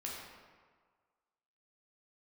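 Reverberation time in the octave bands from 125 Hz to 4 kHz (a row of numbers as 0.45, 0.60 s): 1.4, 1.4, 1.6, 1.7, 1.3, 0.95 s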